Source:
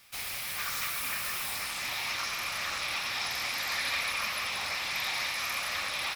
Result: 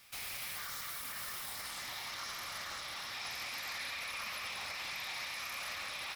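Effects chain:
brickwall limiter −30.5 dBFS, peak gain reduction 10.5 dB
0:00.55–0:03.14: parametric band 2,500 Hz −10 dB 0.21 octaves
level −2 dB

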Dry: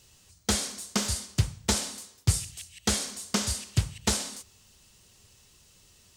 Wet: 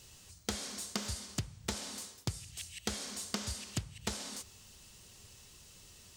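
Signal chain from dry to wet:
dynamic equaliser 9,900 Hz, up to −5 dB, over −44 dBFS, Q 0.89
downward compressor 10 to 1, threshold −36 dBFS, peak gain reduction 19.5 dB
level +2 dB

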